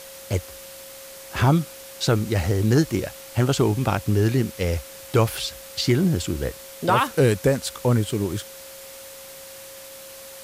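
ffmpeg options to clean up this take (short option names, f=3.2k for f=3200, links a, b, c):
-af "bandreject=f=540:w=30,afftdn=nr=25:nf=-41"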